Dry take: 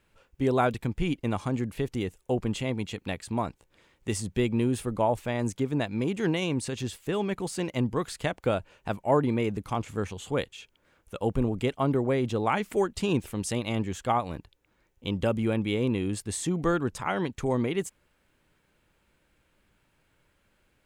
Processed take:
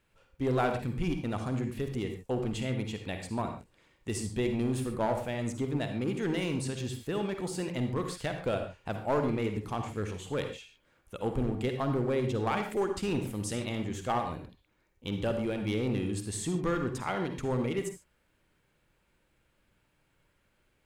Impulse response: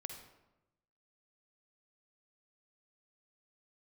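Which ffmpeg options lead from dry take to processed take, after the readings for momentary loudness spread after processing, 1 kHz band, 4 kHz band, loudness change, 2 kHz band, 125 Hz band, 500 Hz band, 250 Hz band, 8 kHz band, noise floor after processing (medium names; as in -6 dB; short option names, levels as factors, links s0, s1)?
7 LU, -4.0 dB, -3.5 dB, -3.5 dB, -3.5 dB, -3.0 dB, -3.5 dB, -4.0 dB, -3.5 dB, -72 dBFS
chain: -filter_complex "[0:a]aeval=exprs='clip(val(0),-1,0.0891)':c=same[s0];[1:a]atrim=start_sample=2205,afade=t=out:st=0.2:d=0.01,atrim=end_sample=9261[s1];[s0][s1]afir=irnorm=-1:irlink=0"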